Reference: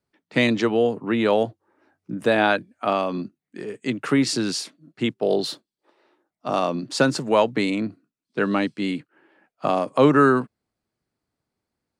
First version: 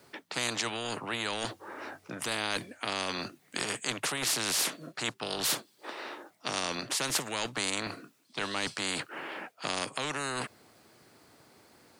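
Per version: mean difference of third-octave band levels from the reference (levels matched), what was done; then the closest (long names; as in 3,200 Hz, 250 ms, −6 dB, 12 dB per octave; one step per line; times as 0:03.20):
14.0 dB: high-pass filter 140 Hz 12 dB per octave
reversed playback
downward compressor 6 to 1, threshold −30 dBFS, peak gain reduction 17.5 dB
reversed playback
parametric band 190 Hz −6 dB 1.2 octaves
every bin compressed towards the loudest bin 4 to 1
level +6 dB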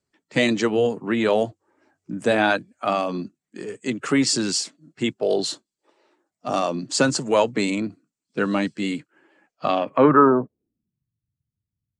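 2.0 dB: spectral magnitudes quantised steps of 15 dB
parametric band 7,700 Hz +4 dB 0.37 octaves
notch filter 3,700 Hz, Q 24
low-pass filter sweep 7,500 Hz → 120 Hz, 0:09.45–0:11.06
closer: second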